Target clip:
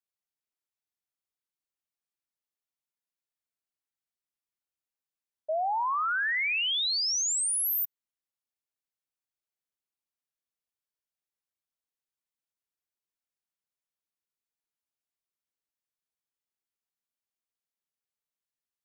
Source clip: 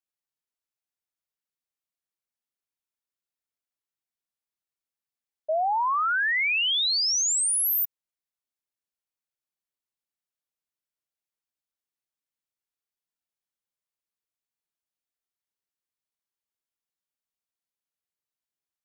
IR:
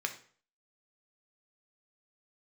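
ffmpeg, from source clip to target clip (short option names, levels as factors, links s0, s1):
-filter_complex "[0:a]asplit=2[s0][s1];[s1]lowpass=1500[s2];[1:a]atrim=start_sample=2205,asetrate=42336,aresample=44100,adelay=96[s3];[s2][s3]afir=irnorm=-1:irlink=0,volume=0.126[s4];[s0][s4]amix=inputs=2:normalize=0,volume=0.631"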